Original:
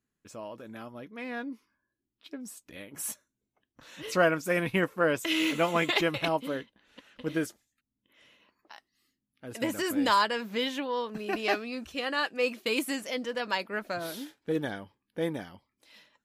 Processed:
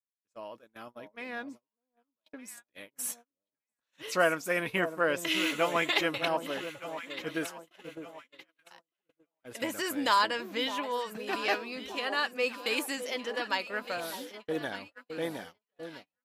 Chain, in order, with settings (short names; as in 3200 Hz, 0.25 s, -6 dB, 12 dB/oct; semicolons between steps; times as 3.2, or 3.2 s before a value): low shelf 300 Hz -11 dB; on a send: echo with dull and thin repeats by turns 0.606 s, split 980 Hz, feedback 62%, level -9 dB; on the sum: gate -46 dBFS, range -36 dB